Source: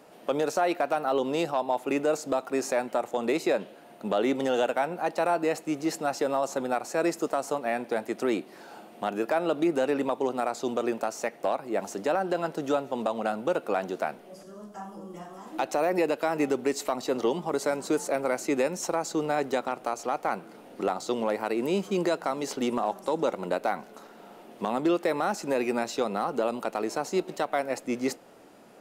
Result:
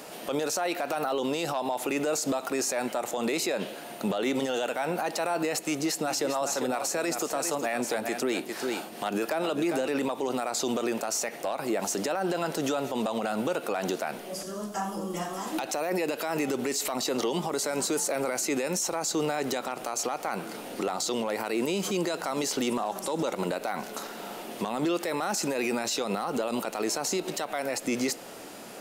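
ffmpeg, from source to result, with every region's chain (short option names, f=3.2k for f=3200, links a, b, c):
-filter_complex "[0:a]asettb=1/sr,asplit=3[a][b][c];[a]atrim=end=5.594[d];[b]atrim=start=5.59:end=9.88,asetpts=PTS-STARTPTS,afade=t=in:d=0.004:c=qsin,afade=t=out:st=4.286:d=0.004:c=qsin,acrossover=split=490[e][f];[e]aeval=exprs='val(0)*(1-0.5/2+0.5/2*cos(2*PI*4.5*n/s))':c=same[g];[f]aeval=exprs='val(0)*(1-0.5/2-0.5/2*cos(2*PI*4.5*n/s))':c=same[h];[g][h]amix=inputs=2:normalize=0,aecho=1:1:400:0.266,atrim=end_sample=189189[i];[c]atrim=start=9.876[j];[d][i]acrossfade=d=0.004:c1=hsin:c2=qsin[k];[k][j]acrossfade=d=0.004:c1=qsin:c2=hsin,highshelf=f=2.3k:g=10.5,alimiter=level_in=4dB:limit=-24dB:level=0:latency=1:release=65,volume=-4dB,volume=8dB"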